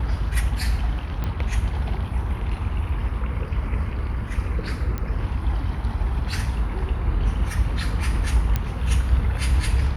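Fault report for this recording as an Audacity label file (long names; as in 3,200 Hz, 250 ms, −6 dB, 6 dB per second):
1.240000	1.240000	click −16 dBFS
4.980000	4.980000	click −15 dBFS
8.560000	8.560000	click −10 dBFS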